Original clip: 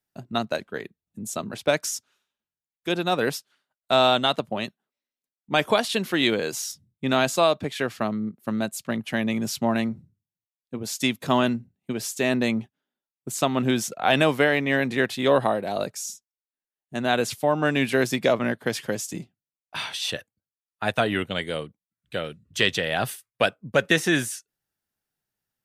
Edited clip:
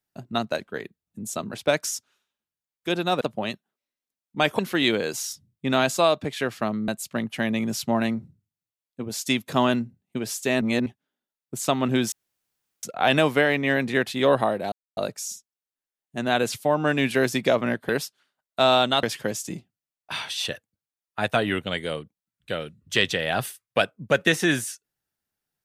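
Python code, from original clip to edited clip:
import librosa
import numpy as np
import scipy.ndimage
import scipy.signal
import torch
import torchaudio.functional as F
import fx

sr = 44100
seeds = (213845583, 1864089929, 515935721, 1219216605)

y = fx.edit(x, sr, fx.move(start_s=3.21, length_s=1.14, to_s=18.67),
    fx.cut(start_s=5.73, length_s=0.25),
    fx.cut(start_s=8.27, length_s=0.35),
    fx.reverse_span(start_s=12.35, length_s=0.25),
    fx.insert_room_tone(at_s=13.86, length_s=0.71),
    fx.insert_silence(at_s=15.75, length_s=0.25), tone=tone)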